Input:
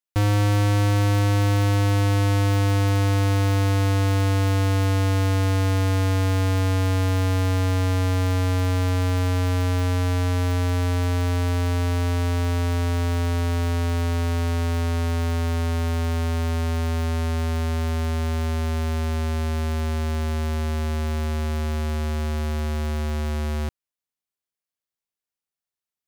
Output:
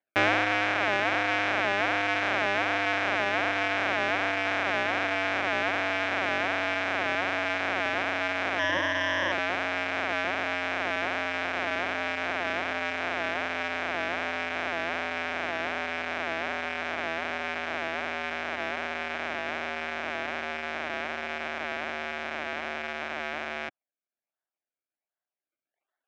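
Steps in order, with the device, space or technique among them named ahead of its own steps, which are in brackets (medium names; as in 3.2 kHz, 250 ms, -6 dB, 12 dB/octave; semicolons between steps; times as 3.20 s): circuit-bent sampling toy (decimation with a swept rate 33×, swing 100% 1.3 Hz; cabinet simulation 440–4700 Hz, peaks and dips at 460 Hz -8 dB, 670 Hz +5 dB, 980 Hz -4 dB, 1.6 kHz +7 dB, 2.3 kHz +9 dB, 4.5 kHz -9 dB); reverb removal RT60 1.9 s; 8.59–9.32 s: rippled EQ curve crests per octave 1.2, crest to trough 16 dB; trim +5 dB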